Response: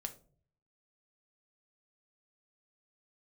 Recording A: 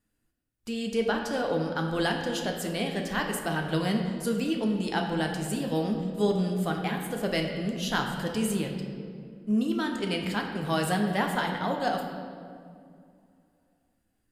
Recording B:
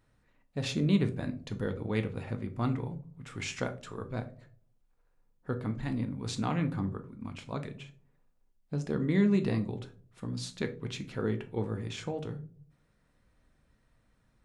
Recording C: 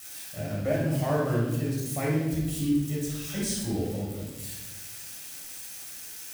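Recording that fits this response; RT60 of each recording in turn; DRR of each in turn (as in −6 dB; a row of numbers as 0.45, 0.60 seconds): B; 2.3, 0.50, 1.1 seconds; 1.5, 6.0, −5.0 decibels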